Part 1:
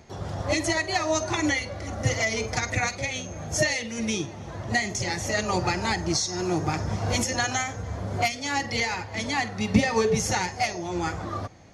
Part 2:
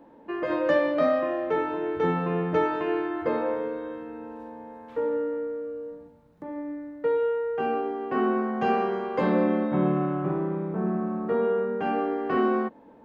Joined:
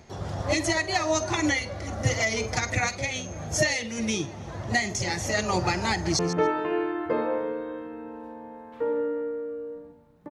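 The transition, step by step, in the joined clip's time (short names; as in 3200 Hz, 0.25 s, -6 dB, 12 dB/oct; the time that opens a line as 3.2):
part 1
5.91–6.19 echo throw 0.14 s, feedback 15%, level -11 dB
6.19 switch to part 2 from 2.35 s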